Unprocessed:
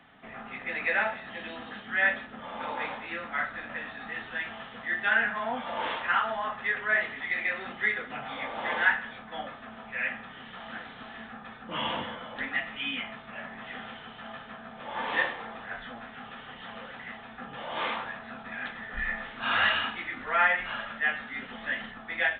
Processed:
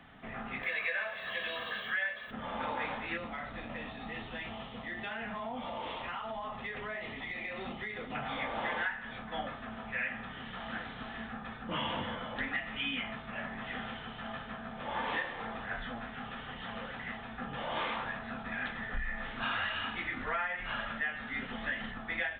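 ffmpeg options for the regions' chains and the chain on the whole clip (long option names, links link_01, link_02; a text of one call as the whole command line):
ffmpeg -i in.wav -filter_complex "[0:a]asettb=1/sr,asplit=3[link_01][link_02][link_03];[link_01]atrim=end=0.634[link_04];[link_02]atrim=start=0.63:end=2.31,asetpts=PTS-STARTPTS,afade=type=in:duration=0.004:curve=qsin,afade=type=out:start_time=1.676:duration=0.004:curve=qsin,aemphasis=mode=production:type=riaa,aecho=1:1:1.8:0.67,atrim=end_sample=74088,acompressor=mode=upward:threshold=-35dB:ratio=2.5:attack=3.2:release=140:knee=2.83:detection=peak[link_05];[link_03]atrim=start=2.306[link_06];[link_04][link_05]acrossfade=duration=0.004:curve1=hsin:curve2=qsin[link_07];[link_07][link_06]acrossfade=duration=0.004:curve1=qsin:curve2=hsin,asettb=1/sr,asplit=3[link_08][link_09][link_10];[link_08]atrim=end=3.174[link_11];[link_09]atrim=start=3.17:end=8.15,asetpts=PTS-STARTPTS,afade=type=in:duration=0.004:curve=qsin,afade=type=out:start_time=4.976:duration=0.004:curve=qsin,equalizer=frequency=1600:width_type=o:width=0.56:gain=-12.5,acompressor=threshold=-36dB:ratio=6:attack=3.2:release=140:knee=1:detection=peak[link_12];[link_10]atrim=start=8.146[link_13];[link_11][link_12]acrossfade=duration=0.004:curve1=hsin:curve2=qsin[link_14];[link_14][link_13]acrossfade=duration=0.004:curve1=qsin:curve2=hsin,lowshelf=frequency=130:gain=11.5,acompressor=threshold=-31dB:ratio=12" out.wav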